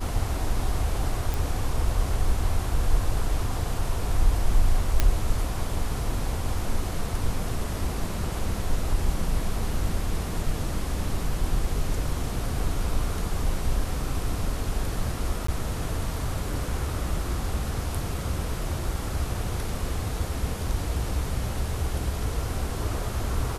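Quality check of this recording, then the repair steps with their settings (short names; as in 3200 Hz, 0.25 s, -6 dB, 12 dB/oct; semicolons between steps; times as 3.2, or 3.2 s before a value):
1.34 pop
5 pop -7 dBFS
15.47–15.48 gap 14 ms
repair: de-click; interpolate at 15.47, 14 ms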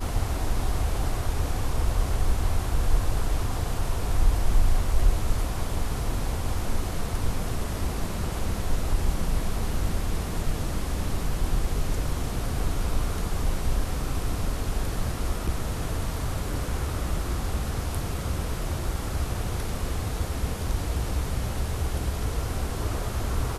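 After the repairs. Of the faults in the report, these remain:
none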